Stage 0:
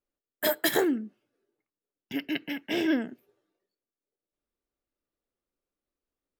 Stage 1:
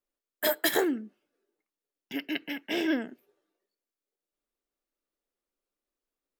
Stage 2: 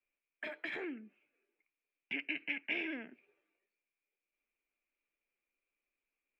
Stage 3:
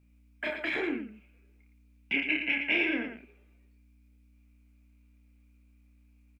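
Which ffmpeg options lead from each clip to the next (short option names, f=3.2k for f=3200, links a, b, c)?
-af "equalizer=f=89:t=o:w=1.6:g=-14.5"
-filter_complex "[0:a]acrossover=split=290[a][b];[b]alimiter=limit=-24dB:level=0:latency=1:release=14[c];[a][c]amix=inputs=2:normalize=0,acompressor=threshold=-41dB:ratio=2,lowpass=f=2.4k:t=q:w=14,volume=-6dB"
-filter_complex "[0:a]bandreject=f=1.8k:w=14,aeval=exprs='val(0)+0.000282*(sin(2*PI*60*n/s)+sin(2*PI*2*60*n/s)/2+sin(2*PI*3*60*n/s)/3+sin(2*PI*4*60*n/s)/4+sin(2*PI*5*60*n/s)/5)':c=same,asplit=2[a][b];[b]aecho=0:1:29.15|113.7:0.631|0.447[c];[a][c]amix=inputs=2:normalize=0,volume=8.5dB"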